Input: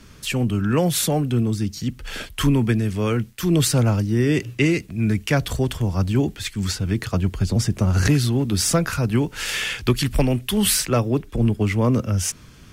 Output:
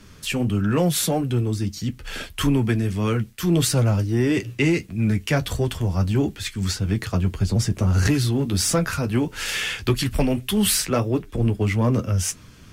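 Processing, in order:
flanger 1.6 Hz, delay 9.6 ms, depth 2.7 ms, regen −43%
in parallel at −7 dB: hard clipping −20 dBFS, distortion −13 dB

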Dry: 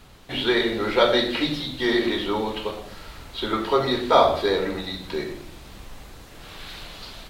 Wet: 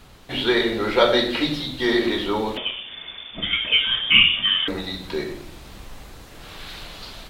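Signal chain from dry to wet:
0:02.57–0:04.68: voice inversion scrambler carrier 3,500 Hz
level +1.5 dB

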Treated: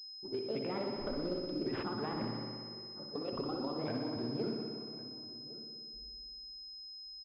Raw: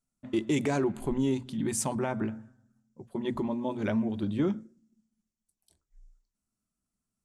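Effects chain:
pitch shifter swept by a sawtooth +7.5 semitones, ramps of 277 ms
low-pass that shuts in the quiet parts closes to 320 Hz, open at −29 dBFS
downward compressor, threshold −34 dBFS, peak gain reduction 10 dB
slap from a distant wall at 190 metres, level −17 dB
spring reverb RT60 2.1 s, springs 59 ms, chirp 60 ms, DRR 1 dB
switching amplifier with a slow clock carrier 5,100 Hz
level −2.5 dB

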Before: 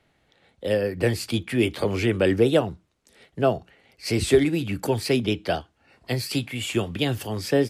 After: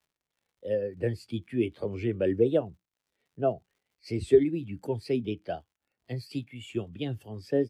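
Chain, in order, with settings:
surface crackle 110 per second −31 dBFS
every bin expanded away from the loudest bin 1.5 to 1
level −2 dB

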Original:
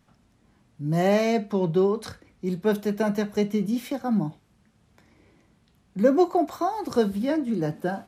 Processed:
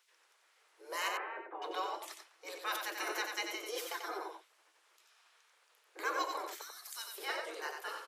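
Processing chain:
gate on every frequency bin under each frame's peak −20 dB weak
0:01.08–0:01.62: Gaussian smoothing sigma 5.3 samples
0:03.71–0:04.17: comb filter 5.8 ms, depth 60%
0:06.61–0:07.18: first difference
in parallel at −4 dB: soft clipping −31.5 dBFS, distortion −17 dB
on the sum: Chebyshev high-pass with heavy ripple 320 Hz, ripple 3 dB
on a send: single-tap delay 91 ms −5.5 dB

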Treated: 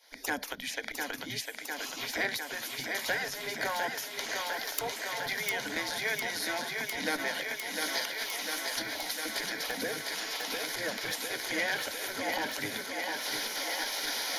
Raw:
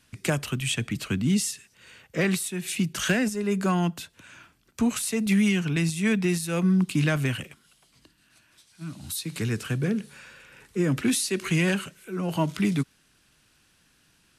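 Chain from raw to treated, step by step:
camcorder AGC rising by 70 dB per second
parametric band 170 Hz +13.5 dB 2.1 octaves
in parallel at −2 dB: downward compressor, threshold −22 dBFS, peak gain reduction 15 dB
on the sum: mains-hum notches 60/120 Hz
gain into a clipping stage and back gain 0 dB
phaser with its sweep stopped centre 1,800 Hz, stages 8
gate on every frequency bin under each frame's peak −20 dB weak
parametric band 67 Hz −15 dB 2.3 octaves
on a send: feedback echo with a high-pass in the loop 703 ms, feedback 81%, high-pass 230 Hz, level −4.5 dB
on the sum: saturating transformer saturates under 2,000 Hz

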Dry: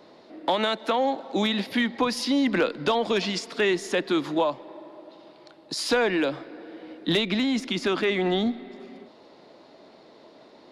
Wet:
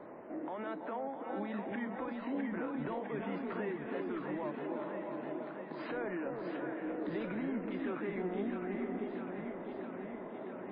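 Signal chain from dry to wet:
low-pass filter 1,900 Hz 24 dB per octave
0:01.43–0:01.98: parametric band 67 Hz −7.5 dB 1.4 octaves
downward compressor 12 to 1, threshold −37 dBFS, peak gain reduction 19 dB
brickwall limiter −34.5 dBFS, peak gain reduction 10 dB
0:03.74–0:04.54: hard clipping −37 dBFS, distortion −32 dB
delay that swaps between a low-pass and a high-pass 328 ms, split 820 Hz, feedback 85%, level −3.5 dB
level +2.5 dB
MP3 16 kbit/s 11,025 Hz

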